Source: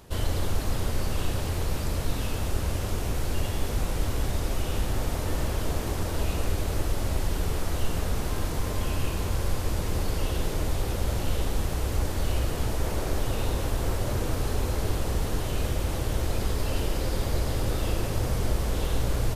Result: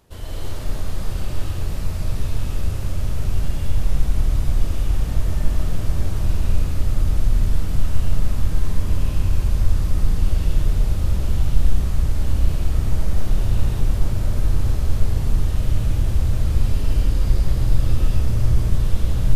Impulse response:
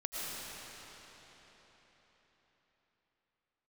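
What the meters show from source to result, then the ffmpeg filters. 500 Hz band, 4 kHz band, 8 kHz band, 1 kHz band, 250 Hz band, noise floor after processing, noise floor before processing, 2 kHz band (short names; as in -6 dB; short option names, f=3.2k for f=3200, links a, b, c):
-4.0 dB, -2.5 dB, -3.0 dB, -3.5 dB, +2.0 dB, -24 dBFS, -31 dBFS, -2.5 dB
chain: -filter_complex "[0:a]asubboost=boost=4.5:cutoff=190[a];[1:a]atrim=start_sample=2205,afade=t=out:st=0.39:d=0.01,atrim=end_sample=17640,asetrate=42336,aresample=44100[b];[a][b]afir=irnorm=-1:irlink=0,volume=-4.5dB"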